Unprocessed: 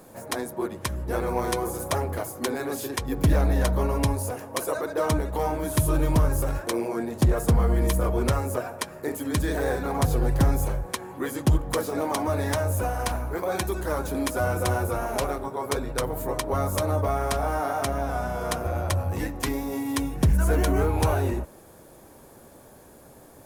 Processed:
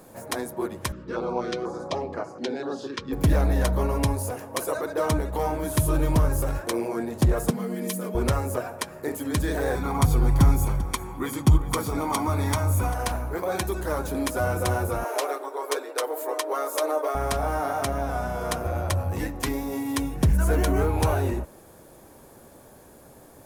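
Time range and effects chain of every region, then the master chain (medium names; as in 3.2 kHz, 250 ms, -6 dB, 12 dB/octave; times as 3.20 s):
0.92–3.13 s: cabinet simulation 180–5200 Hz, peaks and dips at 190 Hz +3 dB, 1.3 kHz +4 dB, 2 kHz -4 dB + step-sequenced notch 4.1 Hz 750–3500 Hz
7.50–8.15 s: brick-wall FIR high-pass 160 Hz + peaking EQ 900 Hz -10 dB 2.2 oct + comb 4.7 ms, depth 49%
9.75–12.94 s: comb 0.9 ms, depth 54% + delay 394 ms -16 dB
15.04–17.15 s: steep high-pass 330 Hz 48 dB/octave + comb 6.6 ms, depth 45%
whole clip: none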